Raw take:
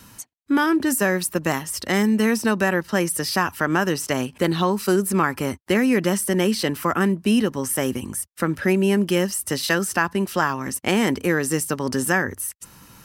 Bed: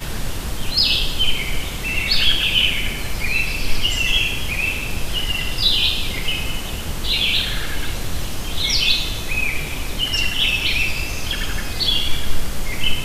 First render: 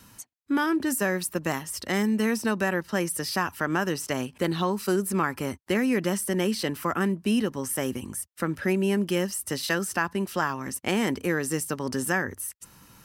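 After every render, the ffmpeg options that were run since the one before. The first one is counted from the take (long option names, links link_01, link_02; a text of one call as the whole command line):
ffmpeg -i in.wav -af "volume=-5.5dB" out.wav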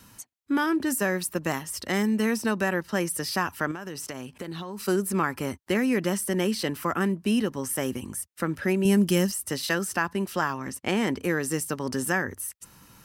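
ffmpeg -i in.wav -filter_complex "[0:a]asettb=1/sr,asplit=3[link_01][link_02][link_03];[link_01]atrim=end=3.714[link_04];[link_02]atrim=start=3.71:end=4.84,asetpts=PTS-STARTPTS,afade=type=in:duration=0.004:curve=qsin,afade=type=out:start_time=1.126:duration=0.004:curve=qsin,acompressor=threshold=-31dB:ratio=10:attack=3.2:release=140:knee=1:detection=peak[link_05];[link_03]atrim=start=4.836[link_06];[link_04][link_05]acrossfade=duration=0.004:curve1=hsin:curve2=qsin[link_07];[link_07][link_06]acrossfade=duration=0.004:curve1=qsin:curve2=hsin,asettb=1/sr,asplit=3[link_08][link_09][link_10];[link_08]atrim=end=8.854[link_11];[link_09]atrim=start=8.85:end=9.32,asetpts=PTS-STARTPTS,afade=type=in:duration=0.004:curve=qsin,afade=type=out:start_time=0.466:duration=0.004:curve=qsin,bass=frequency=250:gain=8,treble=frequency=4000:gain=8[link_12];[link_10]atrim=start=9.316[link_13];[link_11][link_12]acrossfade=duration=0.004:curve1=hsin:curve2=qsin[link_14];[link_14][link_13]acrossfade=duration=0.004:curve1=qsin:curve2=hsin,asettb=1/sr,asplit=3[link_15][link_16][link_17];[link_15]atrim=end=10.584[link_18];[link_16]atrim=start=10.58:end=11.23,asetpts=PTS-STARTPTS,afade=type=in:duration=0.004:curve=qsin,afade=type=out:start_time=0.646:duration=0.004:curve=qsin,highshelf=frequency=8300:gain=-8[link_19];[link_17]atrim=start=11.226[link_20];[link_18][link_19]acrossfade=duration=0.004:curve1=hsin:curve2=qsin[link_21];[link_21][link_20]acrossfade=duration=0.004:curve1=qsin:curve2=hsin" out.wav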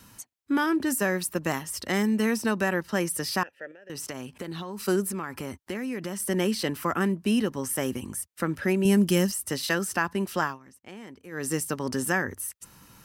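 ffmpeg -i in.wav -filter_complex "[0:a]asettb=1/sr,asplit=3[link_01][link_02][link_03];[link_01]atrim=end=3.434[link_04];[link_02]atrim=start=3.43:end=3.9,asetpts=PTS-STARTPTS,afade=type=in:duration=0.004:curve=qsin,afade=type=out:start_time=0.466:duration=0.004:curve=qsin,asplit=3[link_05][link_06][link_07];[link_05]bandpass=frequency=530:width_type=q:width=8,volume=0dB[link_08];[link_06]bandpass=frequency=1840:width_type=q:width=8,volume=-6dB[link_09];[link_07]bandpass=frequency=2480:width_type=q:width=8,volume=-9dB[link_10];[link_08][link_09][link_10]amix=inputs=3:normalize=0[link_11];[link_03]atrim=start=3.896[link_12];[link_04][link_11]acrossfade=duration=0.004:curve1=hsin:curve2=qsin[link_13];[link_13][link_12]acrossfade=duration=0.004:curve1=qsin:curve2=hsin,asettb=1/sr,asplit=3[link_14][link_15][link_16];[link_14]atrim=end=5.104[link_17];[link_15]atrim=start=5.1:end=6.2,asetpts=PTS-STARTPTS,afade=type=in:duration=0.004:curve=qsin,afade=type=out:start_time=1.096:duration=0.004:curve=qsin,acompressor=threshold=-31dB:ratio=3:attack=3.2:release=140:knee=1:detection=peak[link_18];[link_16]atrim=start=6.196[link_19];[link_17][link_18]acrossfade=duration=0.004:curve1=hsin:curve2=qsin[link_20];[link_20][link_19]acrossfade=duration=0.004:curve1=qsin:curve2=hsin,asplit=3[link_21][link_22][link_23];[link_21]atrim=end=10.59,asetpts=PTS-STARTPTS,afade=type=out:start_time=10.43:duration=0.16:silence=0.125893[link_24];[link_22]atrim=start=10.59:end=11.31,asetpts=PTS-STARTPTS,volume=-18dB[link_25];[link_23]atrim=start=11.31,asetpts=PTS-STARTPTS,afade=type=in:duration=0.16:silence=0.125893[link_26];[link_24][link_25][link_26]concat=n=3:v=0:a=1" out.wav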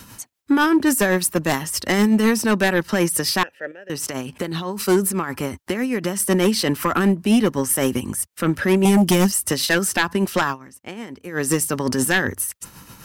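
ffmpeg -i in.wav -af "tremolo=f=7.9:d=0.5,aeval=exprs='0.299*sin(PI/2*2.51*val(0)/0.299)':channel_layout=same" out.wav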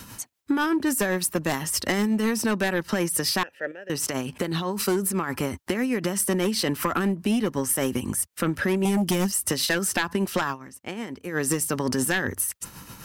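ffmpeg -i in.wav -af "acompressor=threshold=-21dB:ratio=6" out.wav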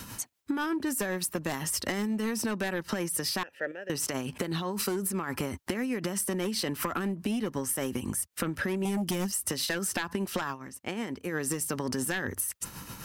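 ffmpeg -i in.wav -af "acompressor=threshold=-28dB:ratio=6" out.wav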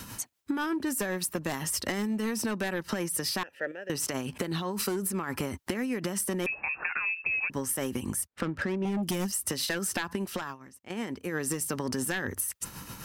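ffmpeg -i in.wav -filter_complex "[0:a]asettb=1/sr,asplit=3[link_01][link_02][link_03];[link_01]atrim=end=6.464[link_04];[link_02]atrim=start=6.46:end=7.5,asetpts=PTS-STARTPTS,afade=type=in:duration=0.004:curve=qsin,afade=type=out:start_time=1.036:duration=0.004:curve=qsin,lowpass=frequency=2400:width_type=q:width=0.5098,lowpass=frequency=2400:width_type=q:width=0.6013,lowpass=frequency=2400:width_type=q:width=0.9,lowpass=frequency=2400:width_type=q:width=2.563,afreqshift=-2800[link_05];[link_03]atrim=start=7.496[link_06];[link_04][link_05]acrossfade=duration=0.004:curve1=hsin:curve2=qsin[link_07];[link_07][link_06]acrossfade=duration=0.004:curve1=qsin:curve2=hsin,asettb=1/sr,asplit=3[link_08][link_09][link_10];[link_08]atrim=end=8.274[link_11];[link_09]atrim=start=8.27:end=9.03,asetpts=PTS-STARTPTS,afade=type=in:duration=0.004:curve=qsin,afade=type=out:start_time=0.756:duration=0.004:curve=qsin,adynamicsmooth=sensitivity=6:basefreq=1600[link_12];[link_10]atrim=start=9.026[link_13];[link_11][link_12]acrossfade=duration=0.004:curve1=hsin:curve2=qsin[link_14];[link_14][link_13]acrossfade=duration=0.004:curve1=qsin:curve2=hsin,asplit=2[link_15][link_16];[link_15]atrim=end=10.9,asetpts=PTS-STARTPTS,afade=type=out:start_time=10.07:duration=0.83:silence=0.237137[link_17];[link_16]atrim=start=10.9,asetpts=PTS-STARTPTS,afade=type=in:duration=0.004:curve=hsin:silence=0.237137[link_18];[link_17][link_18]concat=n=2:v=0:a=1" out.wav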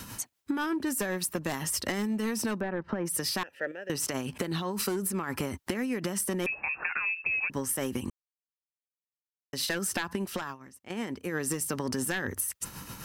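ffmpeg -i in.wav -filter_complex "[0:a]asplit=3[link_01][link_02][link_03];[link_01]afade=type=out:start_time=2.59:duration=0.02[link_04];[link_02]lowpass=1400,afade=type=in:start_time=2.59:duration=0.02,afade=type=out:start_time=3.05:duration=0.02[link_05];[link_03]afade=type=in:start_time=3.05:duration=0.02[link_06];[link_04][link_05][link_06]amix=inputs=3:normalize=0,asplit=3[link_07][link_08][link_09];[link_07]atrim=end=8.1,asetpts=PTS-STARTPTS,afade=type=out:start_time=8.096:duration=0.004:curve=hsin[link_10];[link_08]atrim=start=8.1:end=9.53,asetpts=PTS-STARTPTS,volume=0[link_11];[link_09]atrim=start=9.53,asetpts=PTS-STARTPTS,afade=type=in:duration=0.004:curve=hsin[link_12];[link_10][link_11][link_12]concat=n=3:v=0:a=1" out.wav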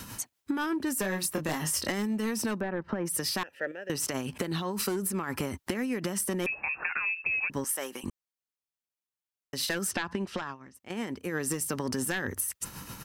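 ffmpeg -i in.wav -filter_complex "[0:a]asplit=3[link_01][link_02][link_03];[link_01]afade=type=out:start_time=1.03:duration=0.02[link_04];[link_02]asplit=2[link_05][link_06];[link_06]adelay=26,volume=-5dB[link_07];[link_05][link_07]amix=inputs=2:normalize=0,afade=type=in:start_time=1.03:duration=0.02,afade=type=out:start_time=1.89:duration=0.02[link_08];[link_03]afade=type=in:start_time=1.89:duration=0.02[link_09];[link_04][link_08][link_09]amix=inputs=3:normalize=0,asettb=1/sr,asplit=3[link_10][link_11][link_12];[link_10]atrim=end=7.644[link_13];[link_11]atrim=start=7.64:end=8.04,asetpts=PTS-STARTPTS,afade=type=in:duration=0.004:curve=qsin,afade=type=out:start_time=0.396:duration=0.004:curve=qsin,highpass=510[link_14];[link_12]atrim=start=8.036[link_15];[link_13][link_14]acrossfade=duration=0.004:curve1=hsin:curve2=qsin[link_16];[link_16][link_15]acrossfade=duration=0.004:curve1=qsin:curve2=hsin,asettb=1/sr,asplit=3[link_17][link_18][link_19];[link_17]atrim=end=9.914[link_20];[link_18]atrim=start=9.91:end=10.75,asetpts=PTS-STARTPTS,afade=type=in:duration=0.004:curve=qsin,afade=type=out:start_time=0.836:duration=0.004:curve=qsin,lowpass=5300[link_21];[link_19]atrim=start=10.746[link_22];[link_20][link_21]acrossfade=duration=0.004:curve1=hsin:curve2=qsin[link_23];[link_23][link_22]acrossfade=duration=0.004:curve1=qsin:curve2=hsin" out.wav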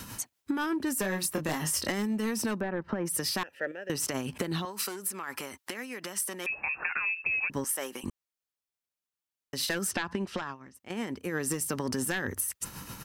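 ffmpeg -i in.wav -filter_complex "[0:a]asettb=1/sr,asplit=3[link_01][link_02][link_03];[link_01]atrim=end=4.654[link_04];[link_02]atrim=start=4.65:end=6.5,asetpts=PTS-STARTPTS,afade=type=in:duration=0.004:curve=qsin,afade=type=out:start_time=1.846:duration=0.004:curve=qsin,highpass=frequency=980:poles=1[link_05];[link_03]atrim=start=6.496[link_06];[link_04][link_05]acrossfade=duration=0.004:curve1=hsin:curve2=qsin[link_07];[link_07][link_06]acrossfade=duration=0.004:curve1=qsin:curve2=hsin" out.wav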